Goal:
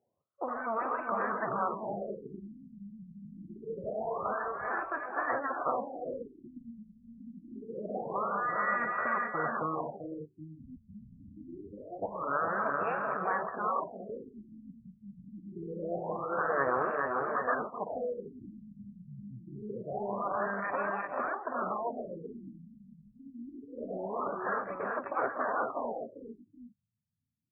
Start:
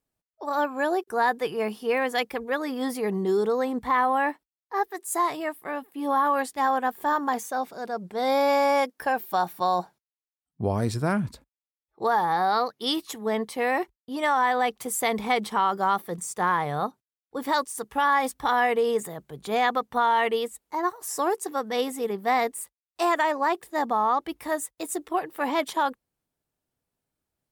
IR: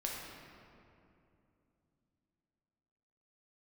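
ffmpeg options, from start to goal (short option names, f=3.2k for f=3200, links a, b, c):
-filter_complex "[0:a]highshelf=f=2.1k:t=q:w=3:g=-12,asetrate=38170,aresample=44100,atempo=1.15535,highpass=f=88:w=0.5412,highpass=f=88:w=1.3066,aphaser=in_gain=1:out_gain=1:delay=2:decay=0.48:speed=0.49:type=triangular,afftfilt=real='re*lt(hypot(re,im),0.158)':imag='im*lt(hypot(re,im),0.158)':win_size=1024:overlap=0.75,bass=f=250:g=-10,treble=f=4k:g=2,aecho=1:1:1.7:0.34,asplit=2[a][b];[b]aecho=0:1:47|166|392|427|775|795:0.178|0.15|0.473|0.596|0.422|0.316[c];[a][c]amix=inputs=2:normalize=0,afftfilt=real='re*lt(b*sr/1024,240*pow(2800/240,0.5+0.5*sin(2*PI*0.25*pts/sr)))':imag='im*lt(b*sr/1024,240*pow(2800/240,0.5+0.5*sin(2*PI*0.25*pts/sr)))':win_size=1024:overlap=0.75,volume=4.5dB"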